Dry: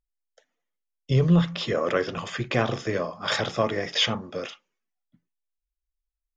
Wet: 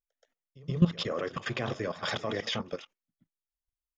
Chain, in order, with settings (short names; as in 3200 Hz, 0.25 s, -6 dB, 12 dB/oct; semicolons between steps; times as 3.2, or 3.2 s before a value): tempo 1.6×; level quantiser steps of 16 dB; pre-echo 0.126 s -18 dB